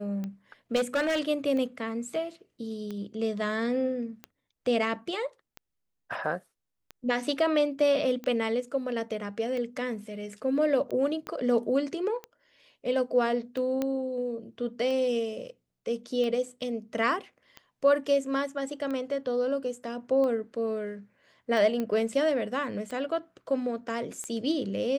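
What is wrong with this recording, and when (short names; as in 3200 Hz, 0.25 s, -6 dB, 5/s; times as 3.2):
tick 45 rpm -24 dBFS
0.75–1.21 clipped -22.5 dBFS
11.27 pop -22 dBFS
13.82 pop -16 dBFS
21.8 pop -19 dBFS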